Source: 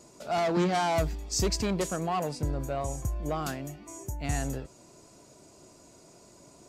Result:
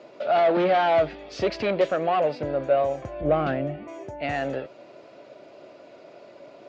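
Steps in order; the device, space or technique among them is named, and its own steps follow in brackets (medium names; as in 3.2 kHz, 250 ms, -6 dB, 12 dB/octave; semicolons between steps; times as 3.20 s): 3.21–3.88 s: RIAA curve playback; overdrive pedal into a guitar cabinet (overdrive pedal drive 17 dB, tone 4.3 kHz, clips at -12 dBFS; cabinet simulation 110–3500 Hz, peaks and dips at 180 Hz -4 dB, 570 Hz +9 dB, 1 kHz -7 dB)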